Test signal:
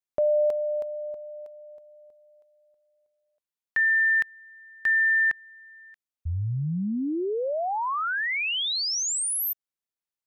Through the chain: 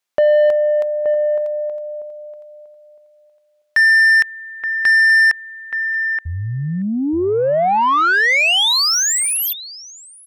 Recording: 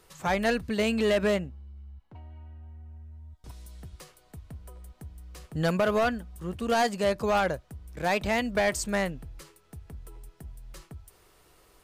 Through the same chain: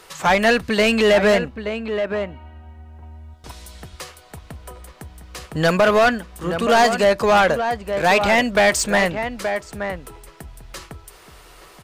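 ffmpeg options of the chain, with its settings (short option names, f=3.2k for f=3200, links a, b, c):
-filter_complex "[0:a]asplit=2[a][b];[b]adelay=874.6,volume=-10dB,highshelf=f=4k:g=-19.7[c];[a][c]amix=inputs=2:normalize=0,asplit=2[d][e];[e]highpass=f=720:p=1,volume=13dB,asoftclip=type=tanh:threshold=-16dB[f];[d][f]amix=inputs=2:normalize=0,lowpass=f=5.6k:p=1,volume=-6dB,volume=8.5dB"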